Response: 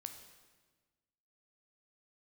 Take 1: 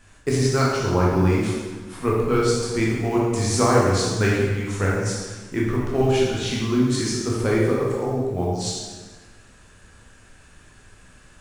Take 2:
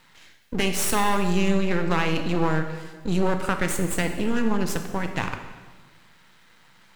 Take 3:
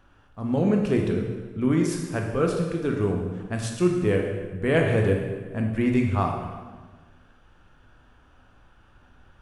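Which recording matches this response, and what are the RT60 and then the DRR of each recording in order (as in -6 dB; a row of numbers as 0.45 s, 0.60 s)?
2; 1.4 s, 1.4 s, 1.4 s; -5.0 dB, 6.0 dB, 1.0 dB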